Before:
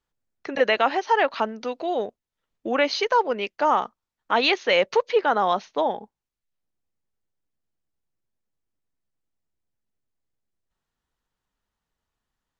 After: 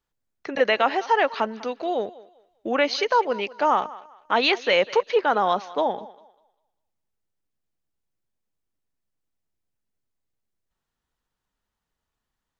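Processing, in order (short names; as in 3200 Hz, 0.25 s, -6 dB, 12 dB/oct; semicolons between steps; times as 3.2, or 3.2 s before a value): thinning echo 0.198 s, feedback 29%, high-pass 360 Hz, level -18 dB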